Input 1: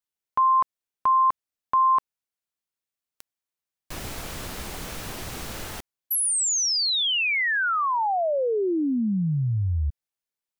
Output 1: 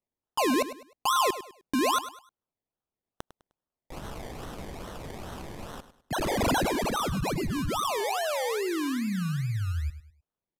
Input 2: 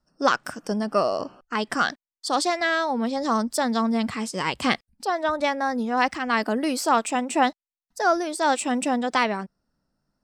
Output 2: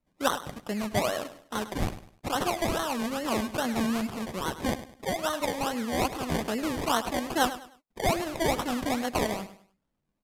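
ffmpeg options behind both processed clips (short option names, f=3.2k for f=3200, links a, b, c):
-filter_complex "[0:a]equalizer=f=6.9k:w=2.4:g=5,acrusher=samples=26:mix=1:aa=0.000001:lfo=1:lforange=15.6:lforate=2.4,asplit=2[a][b];[b]aecho=0:1:102|204|306:0.211|0.0655|0.0203[c];[a][c]amix=inputs=2:normalize=0,aresample=32000,aresample=44100,volume=-5.5dB"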